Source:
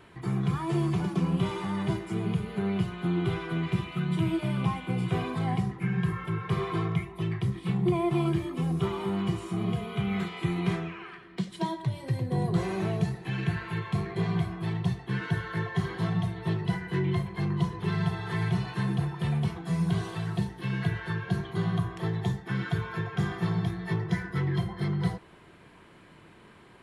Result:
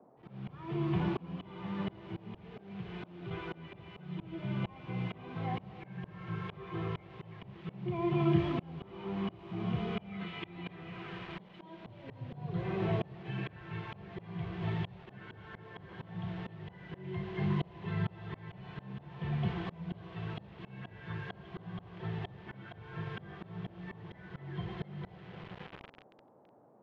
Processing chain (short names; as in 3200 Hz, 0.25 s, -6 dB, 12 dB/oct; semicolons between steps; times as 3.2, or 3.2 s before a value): bin magnitudes rounded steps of 15 dB; 2.59–3.31 compressor 6:1, threshold -29 dBFS, peak gain reduction 7.5 dB; 10.21–10.81 high shelf 2600 Hz +8 dB; 11.89–12.51 comb 7 ms, depth 71%; delay with a stepping band-pass 0.268 s, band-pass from 520 Hz, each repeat 0.7 oct, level -9 dB; Schroeder reverb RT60 3.2 s, combs from 26 ms, DRR 8 dB; bit-crush 7-bit; Chebyshev low-pass 3100 Hz, order 3; auto swell 0.784 s; band noise 120–840 Hz -63 dBFS; gain +1 dB